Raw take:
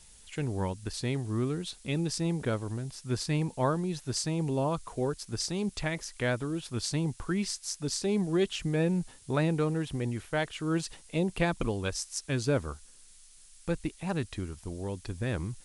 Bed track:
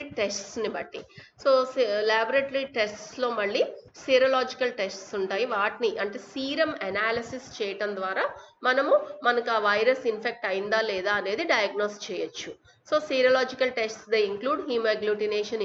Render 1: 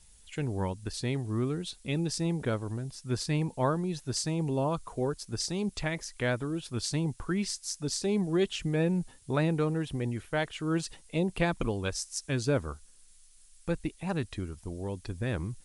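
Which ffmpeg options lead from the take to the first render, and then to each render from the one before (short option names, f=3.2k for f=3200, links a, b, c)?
-af "afftdn=nr=6:nf=-55"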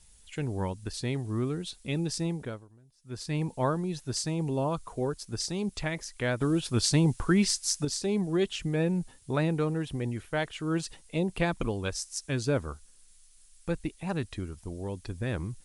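-filter_complex "[0:a]asettb=1/sr,asplit=3[a][b][c];[a]atrim=end=6.414[d];[b]atrim=start=6.41:end=7.85,asetpts=PTS-STARTPTS,afade=t=in:d=0.004:c=qsin,afade=t=out:st=1.436:d=0.004:c=qsin,acontrast=80[e];[c]atrim=start=7.846[f];[d][e]acrossfade=d=0.004:c1=hsin:c2=qsin[g];[g][f]acrossfade=d=0.004:c1=qsin:c2=hsin,asplit=3[h][i][j];[h]atrim=end=2.68,asetpts=PTS-STARTPTS,afade=t=out:st=2.22:d=0.46:silence=0.0749894[k];[i]atrim=start=2.68:end=2.98,asetpts=PTS-STARTPTS,volume=-22.5dB[l];[j]atrim=start=2.98,asetpts=PTS-STARTPTS,afade=t=in:d=0.46:silence=0.0749894[m];[k][l][m]concat=n=3:v=0:a=1"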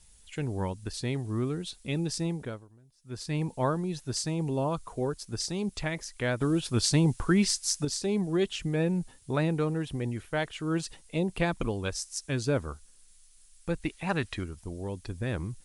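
-filter_complex "[0:a]asettb=1/sr,asplit=3[a][b][c];[a]atrim=end=13.824[d];[b]atrim=start=13.82:end=14.44,asetpts=PTS-STARTPTS,afade=t=in:d=0.004:c=qsin,afade=t=out:st=0.616:d=0.004:c=qsin,equalizer=f=1.8k:t=o:w=2.7:g=8.5[e];[c]atrim=start=14.436[f];[d][e]acrossfade=d=0.004:c1=hsin:c2=qsin[g];[g][f]acrossfade=d=0.004:c1=qsin:c2=hsin"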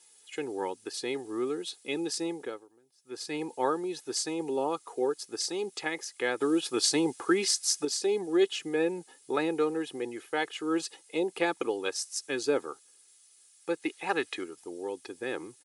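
-af "highpass=f=250:w=0.5412,highpass=f=250:w=1.3066,aecho=1:1:2.4:0.64"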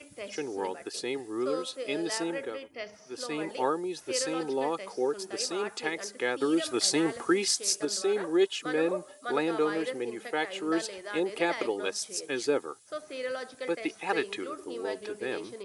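-filter_complex "[1:a]volume=-13.5dB[a];[0:a][a]amix=inputs=2:normalize=0"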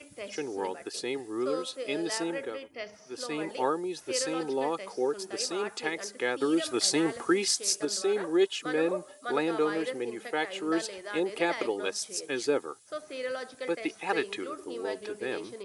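-af anull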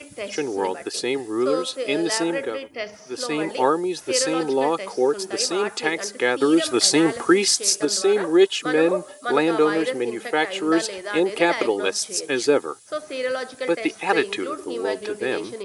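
-af "volume=9dB,alimiter=limit=-3dB:level=0:latency=1"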